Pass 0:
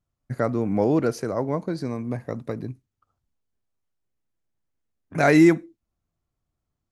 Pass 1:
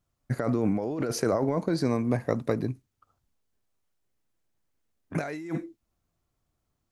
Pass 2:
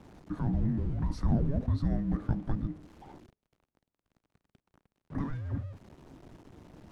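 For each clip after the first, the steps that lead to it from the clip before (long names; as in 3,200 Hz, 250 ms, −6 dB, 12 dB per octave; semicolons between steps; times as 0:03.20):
bass and treble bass −3 dB, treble +1 dB; compressor whose output falls as the input rises −28 dBFS, ratio −1
converter with a step at zero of −37.5 dBFS; resonant band-pass 510 Hz, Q 0.83; frequency shifter −430 Hz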